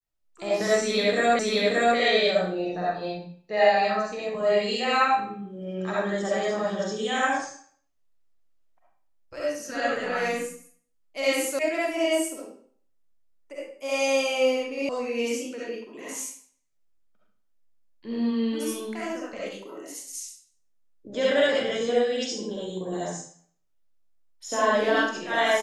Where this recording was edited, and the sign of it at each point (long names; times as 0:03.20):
0:01.39: the same again, the last 0.58 s
0:11.59: cut off before it has died away
0:14.89: cut off before it has died away